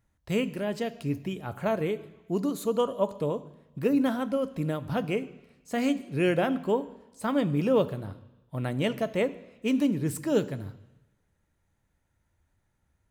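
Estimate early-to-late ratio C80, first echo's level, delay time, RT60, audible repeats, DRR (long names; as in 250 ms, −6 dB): 18.5 dB, no echo audible, no echo audible, 1.0 s, no echo audible, 12.0 dB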